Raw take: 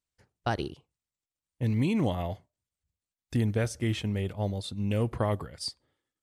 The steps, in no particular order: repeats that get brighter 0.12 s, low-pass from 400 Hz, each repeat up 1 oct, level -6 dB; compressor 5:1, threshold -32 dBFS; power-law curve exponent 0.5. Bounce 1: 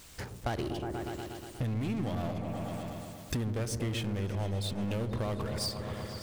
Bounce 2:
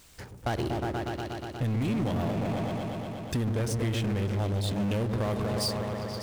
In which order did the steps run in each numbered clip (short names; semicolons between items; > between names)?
power-law curve > repeats that get brighter > compressor; repeats that get brighter > compressor > power-law curve